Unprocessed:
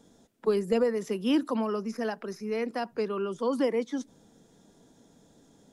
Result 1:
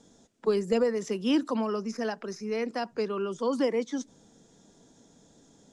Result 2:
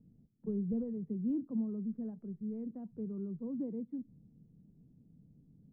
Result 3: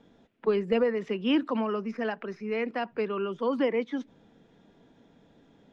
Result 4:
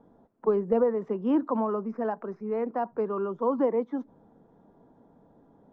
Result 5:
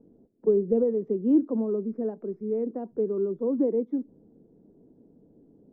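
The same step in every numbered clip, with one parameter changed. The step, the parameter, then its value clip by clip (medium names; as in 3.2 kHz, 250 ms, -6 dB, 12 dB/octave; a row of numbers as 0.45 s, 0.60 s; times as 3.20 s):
resonant low-pass, frequency: 7 kHz, 150 Hz, 2.6 kHz, 1 kHz, 390 Hz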